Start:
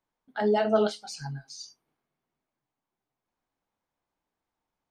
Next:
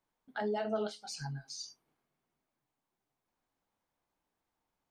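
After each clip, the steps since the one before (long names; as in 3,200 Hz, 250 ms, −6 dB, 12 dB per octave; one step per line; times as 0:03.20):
downward compressor 2 to 1, threshold −40 dBFS, peak gain reduction 12.5 dB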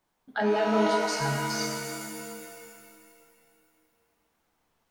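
reverb with rising layers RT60 2.4 s, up +7 semitones, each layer −2 dB, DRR 2.5 dB
level +8 dB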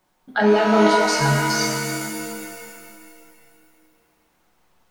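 convolution reverb RT60 0.55 s, pre-delay 5 ms, DRR 7 dB
level +8.5 dB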